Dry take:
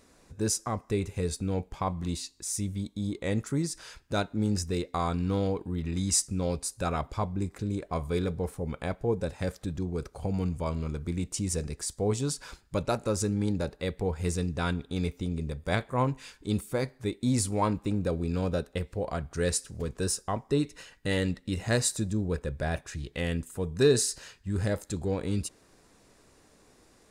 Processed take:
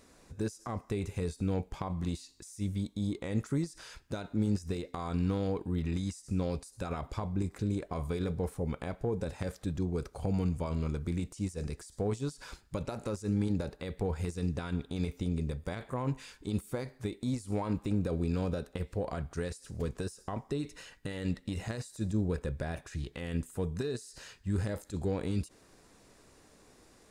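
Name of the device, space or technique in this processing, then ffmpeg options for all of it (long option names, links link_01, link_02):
de-esser from a sidechain: -filter_complex "[0:a]asplit=2[link_01][link_02];[link_02]highpass=frequency=6300:poles=1,apad=whole_len=1195309[link_03];[link_01][link_03]sidechaincompress=threshold=-51dB:ratio=8:attack=4.6:release=39"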